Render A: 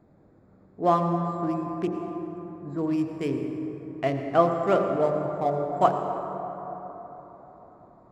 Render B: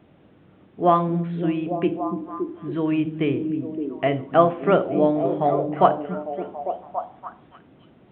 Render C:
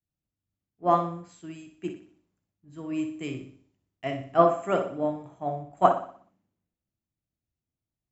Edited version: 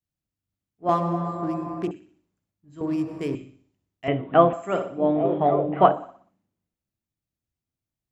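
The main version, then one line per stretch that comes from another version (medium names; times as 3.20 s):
C
0.89–1.91 s: from A
2.81–3.35 s: from A
4.08–4.53 s: from B
5.04–5.97 s: from B, crossfade 0.16 s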